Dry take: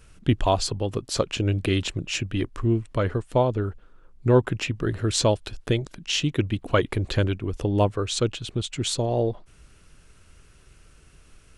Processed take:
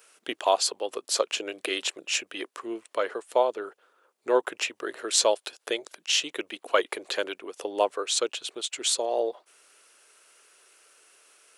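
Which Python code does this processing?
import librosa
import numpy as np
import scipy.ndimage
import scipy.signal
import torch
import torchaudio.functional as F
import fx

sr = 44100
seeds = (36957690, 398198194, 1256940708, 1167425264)

y = scipy.signal.sosfilt(scipy.signal.butter(4, 440.0, 'highpass', fs=sr, output='sos'), x)
y = fx.high_shelf(y, sr, hz=9100.0, db=10.5)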